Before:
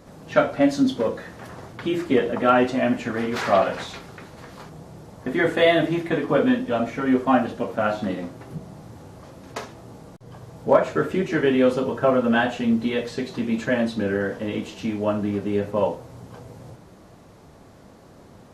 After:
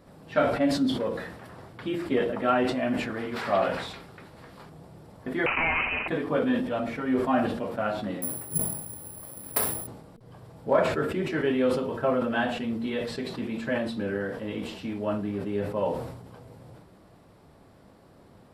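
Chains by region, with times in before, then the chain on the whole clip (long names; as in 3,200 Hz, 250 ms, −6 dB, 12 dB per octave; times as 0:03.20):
0:05.46–0:06.08: voice inversion scrambler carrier 2,800 Hz + every bin compressed towards the loudest bin 2 to 1
0:08.22–0:09.87: transient designer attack +7 dB, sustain +1 dB + bad sample-rate conversion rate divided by 4×, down none, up zero stuff
whole clip: parametric band 6,400 Hz −12 dB 0.25 octaves; hum removal 230 Hz, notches 2; level that may fall only so fast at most 57 dB per second; level −6.5 dB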